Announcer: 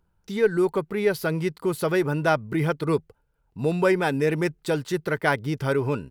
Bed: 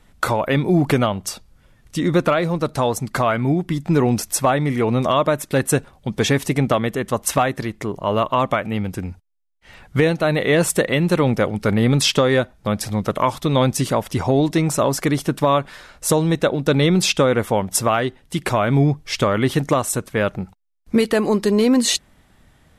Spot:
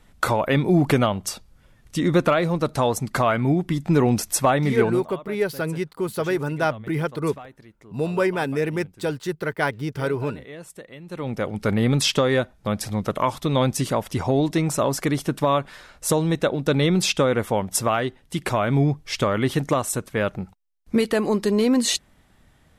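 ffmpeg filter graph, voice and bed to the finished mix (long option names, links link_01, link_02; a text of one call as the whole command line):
ffmpeg -i stem1.wav -i stem2.wav -filter_complex "[0:a]adelay=4350,volume=-1dB[link_01];[1:a]volume=18dB,afade=type=out:start_time=4.82:duration=0.22:silence=0.0841395,afade=type=in:start_time=11.06:duration=0.6:silence=0.105925[link_02];[link_01][link_02]amix=inputs=2:normalize=0" out.wav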